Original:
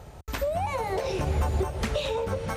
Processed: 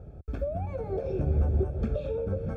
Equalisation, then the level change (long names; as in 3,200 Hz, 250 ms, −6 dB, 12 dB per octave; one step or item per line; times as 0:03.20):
moving average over 45 samples
+1.5 dB